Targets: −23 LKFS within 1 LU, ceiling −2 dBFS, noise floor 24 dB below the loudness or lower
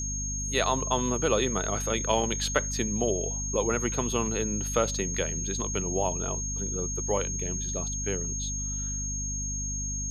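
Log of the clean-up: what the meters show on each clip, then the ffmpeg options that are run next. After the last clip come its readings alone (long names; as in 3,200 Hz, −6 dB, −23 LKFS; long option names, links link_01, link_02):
mains hum 50 Hz; hum harmonics up to 250 Hz; level of the hum −32 dBFS; interfering tone 6,500 Hz; level of the tone −32 dBFS; integrated loudness −28.5 LKFS; sample peak −8.0 dBFS; target loudness −23.0 LKFS
→ -af "bandreject=frequency=50:width_type=h:width=4,bandreject=frequency=100:width_type=h:width=4,bandreject=frequency=150:width_type=h:width=4,bandreject=frequency=200:width_type=h:width=4,bandreject=frequency=250:width_type=h:width=4"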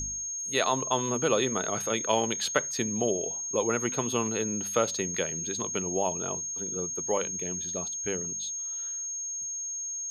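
mains hum none found; interfering tone 6,500 Hz; level of the tone −32 dBFS
→ -af "bandreject=frequency=6500:width=30"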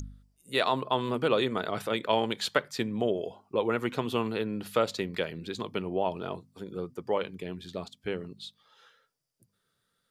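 interfering tone none found; integrated loudness −31.0 LKFS; sample peak −8.0 dBFS; target loudness −23.0 LKFS
→ -af "volume=8dB,alimiter=limit=-2dB:level=0:latency=1"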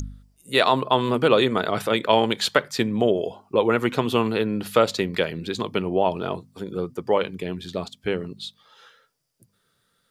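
integrated loudness −23.0 LKFS; sample peak −2.0 dBFS; background noise floor −70 dBFS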